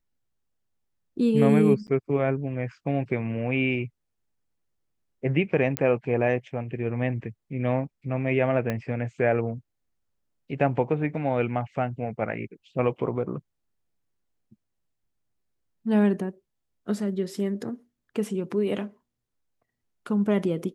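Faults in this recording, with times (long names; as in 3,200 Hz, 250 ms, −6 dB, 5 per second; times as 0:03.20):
0:01.87–0:01.88: drop-out 9.7 ms
0:05.77: click −9 dBFS
0:08.70: click −15 dBFS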